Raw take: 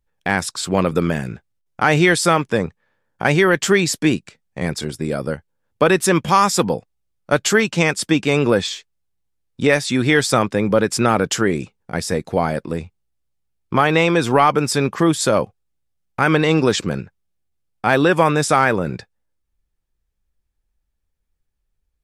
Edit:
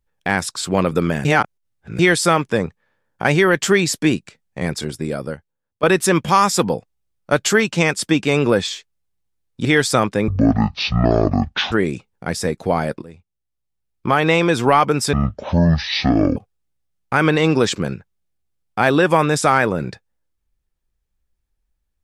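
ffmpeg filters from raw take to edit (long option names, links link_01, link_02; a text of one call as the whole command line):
ffmpeg -i in.wav -filter_complex "[0:a]asplit=10[link_01][link_02][link_03][link_04][link_05][link_06][link_07][link_08][link_09][link_10];[link_01]atrim=end=1.252[link_11];[link_02]atrim=start=1.248:end=1.992,asetpts=PTS-STARTPTS,areverse[link_12];[link_03]atrim=start=1.988:end=5.83,asetpts=PTS-STARTPTS,afade=type=out:start_time=2.962:duration=0.88:silence=0.133352[link_13];[link_04]atrim=start=5.83:end=9.652,asetpts=PTS-STARTPTS,afade=type=in:duration=0.004:curve=hsin:silence=0.133352[link_14];[link_05]atrim=start=10.038:end=10.674[link_15];[link_06]atrim=start=10.67:end=11.39,asetpts=PTS-STARTPTS,asetrate=22050,aresample=44100[link_16];[link_07]atrim=start=11.386:end=12.69,asetpts=PTS-STARTPTS,afade=type=out:start_time=1.3:duration=0.004:curve=hsin:silence=0.133352[link_17];[link_08]atrim=start=12.69:end=14.804,asetpts=PTS-STARTPTS,afade=type=in:duration=1.27:silence=0.133352[link_18];[link_09]atrim=start=14.8:end=15.43,asetpts=PTS-STARTPTS,asetrate=22491,aresample=44100,atrim=end_sample=54476,asetpts=PTS-STARTPTS[link_19];[link_10]atrim=start=15.426[link_20];[link_11][link_12]acrossfade=duration=0.004:curve1=hsin:curve2=hsin[link_21];[link_13][link_14]concat=n=2:v=0:a=1[link_22];[link_21][link_22]acrossfade=duration=0.004:curve1=hsin:curve2=hsin[link_23];[link_23][link_15]acrossfade=duration=0.004:curve1=hsin:curve2=hsin[link_24];[link_24][link_16]acrossfade=duration=0.004:curve1=hsin:curve2=hsin[link_25];[link_17][link_18]concat=n=2:v=0:a=1[link_26];[link_25][link_26]acrossfade=duration=0.004:curve1=hsin:curve2=hsin[link_27];[link_27][link_19]acrossfade=duration=0.004:curve1=hsin:curve2=hsin[link_28];[link_28][link_20]acrossfade=duration=0.004:curve1=hsin:curve2=hsin" out.wav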